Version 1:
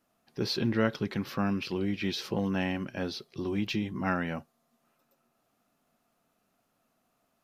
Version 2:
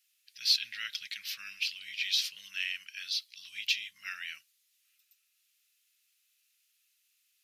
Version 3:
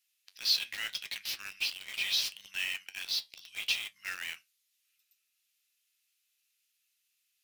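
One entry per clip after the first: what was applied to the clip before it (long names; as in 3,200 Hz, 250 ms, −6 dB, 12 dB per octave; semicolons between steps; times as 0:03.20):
inverse Chebyshev high-pass filter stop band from 930 Hz, stop band 50 dB; level +8 dB
in parallel at −7 dB: log-companded quantiser 2 bits; on the sum: flanger 0.77 Hz, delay 9.1 ms, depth 3.3 ms, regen −64%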